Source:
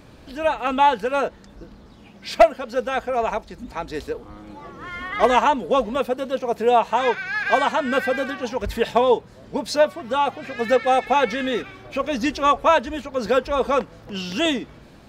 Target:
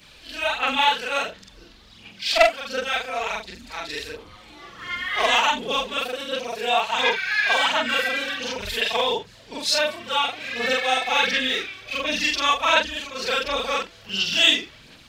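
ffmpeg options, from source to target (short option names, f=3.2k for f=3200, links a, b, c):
-af "afftfilt=real='re':imag='-im':win_size=4096:overlap=0.75,equalizer=f=3k:t=o:w=2:g=11.5,aphaser=in_gain=1:out_gain=1:delay=3:decay=0.39:speed=1.4:type=sinusoidal,highshelf=f=2.3k:g=12,volume=-5.5dB"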